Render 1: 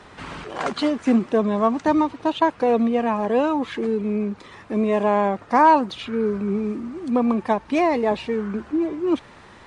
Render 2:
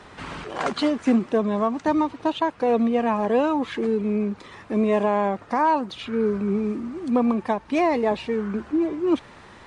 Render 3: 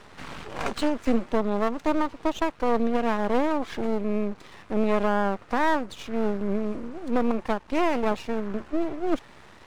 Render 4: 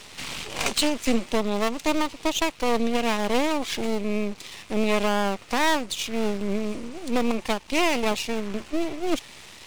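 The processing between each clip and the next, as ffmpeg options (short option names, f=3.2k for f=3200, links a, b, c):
-af "alimiter=limit=-11dB:level=0:latency=1:release=476"
-af "aeval=exprs='max(val(0),0)':c=same"
-af "aexciter=amount=3.6:drive=6.5:freq=2.2k"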